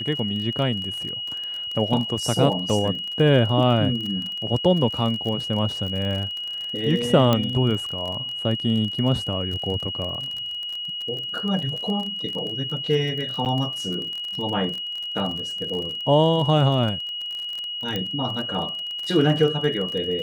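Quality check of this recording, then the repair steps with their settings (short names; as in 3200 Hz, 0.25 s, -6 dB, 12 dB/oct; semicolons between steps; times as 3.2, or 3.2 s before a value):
crackle 30/s -28 dBFS
tone 2900 Hz -28 dBFS
7.33 pop -7 dBFS
13.45–13.46 gap 8.5 ms
17.96 pop -13 dBFS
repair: de-click; notch 2900 Hz, Q 30; interpolate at 13.45, 8.5 ms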